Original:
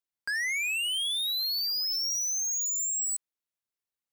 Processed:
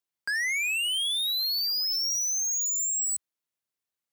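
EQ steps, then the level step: HPF 73 Hz 24 dB/oct; +2.0 dB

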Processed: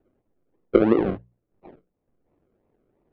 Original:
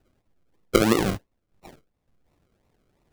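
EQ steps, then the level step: Bessel low-pass 2000 Hz, order 6; bell 380 Hz +10 dB 2 oct; notches 60/120/180 Hz; -6.0 dB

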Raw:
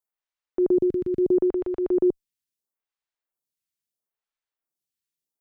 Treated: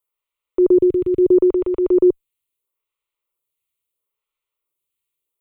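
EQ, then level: fixed phaser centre 1100 Hz, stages 8; +9.0 dB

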